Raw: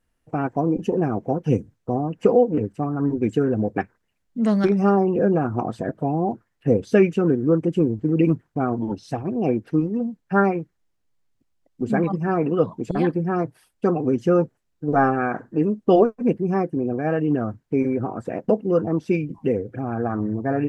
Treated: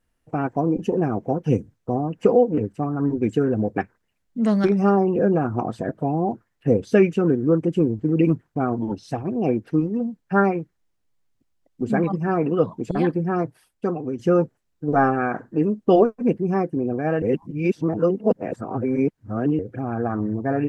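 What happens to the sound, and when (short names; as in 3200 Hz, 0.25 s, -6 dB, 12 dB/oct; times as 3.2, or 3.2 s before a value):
13.43–14.19 fade out, to -8.5 dB
17.22–19.59 reverse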